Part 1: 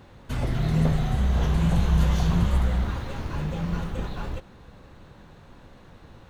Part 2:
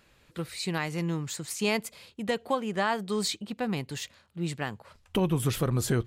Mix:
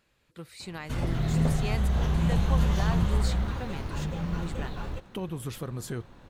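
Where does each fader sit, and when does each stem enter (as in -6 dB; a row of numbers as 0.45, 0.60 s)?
-3.0, -8.5 dB; 0.60, 0.00 s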